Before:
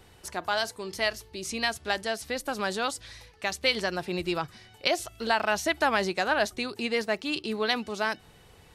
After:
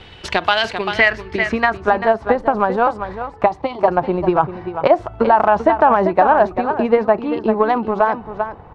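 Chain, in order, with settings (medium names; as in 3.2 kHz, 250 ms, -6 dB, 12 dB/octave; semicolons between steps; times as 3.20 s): in parallel at -1 dB: compression, threshold -39 dBFS, peak gain reduction 18.5 dB; on the sum: low-pass sweep 3.2 kHz -> 970 Hz, 0.40–2.04 s; 3.46–3.88 s: static phaser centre 320 Hz, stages 8; transient shaper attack +11 dB, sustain +7 dB; on a send: delay 391 ms -11 dB; on the sum: loudness maximiser +7 dB; trim -1 dB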